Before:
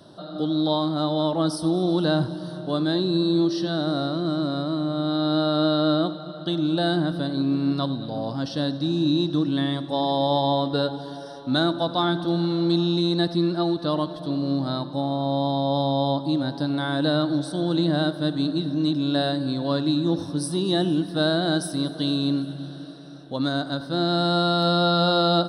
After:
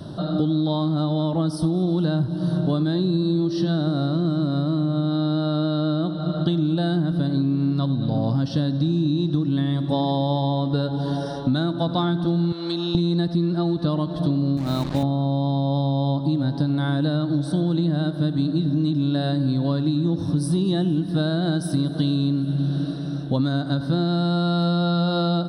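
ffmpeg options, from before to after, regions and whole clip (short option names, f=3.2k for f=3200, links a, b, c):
-filter_complex "[0:a]asettb=1/sr,asplit=3[a][b][c];[a]atrim=end=12.524[d];[b]atrim=start=12.52:end=12.95,asetpts=PTS-STARTPTS,afade=t=in:d=0.004:c=qsin,afade=t=out:st=0.426:d=0.004:c=qsin,highpass=370,acrossover=split=1100|5300[e][f][g];[e]acompressor=threshold=-37dB:ratio=4[h];[f]acompressor=threshold=-37dB:ratio=4[i];[g]acompressor=threshold=-52dB:ratio=4[j];[h][i][j]amix=inputs=3:normalize=0[k];[c]atrim=start=12.946[l];[d][k]acrossfade=d=0.004:c1=hsin:c2=qsin[m];[m][l]acrossfade=d=0.004:c1=qsin:c2=hsin,asettb=1/sr,asplit=3[n][o][p];[n]atrim=end=14.574[q];[o]atrim=start=14.57:end=15.03,asetpts=PTS-STARTPTS,afade=t=in:d=0.004:c=qsin,afade=t=out:st=0.456:d=0.004:c=qsin,highpass=f=210:p=1,tremolo=f=50:d=0.261,acrusher=bits=5:mix=0:aa=0.5[r];[p]atrim=start=15.026[s];[q][r]acrossfade=d=0.004:c1=hsin:c2=qsin[t];[t][s]acrossfade=d=0.004:c1=qsin:c2=hsin,bass=f=250:g=13,treble=f=4k:g=-2,acompressor=threshold=-25dB:ratio=12,volume=7dB"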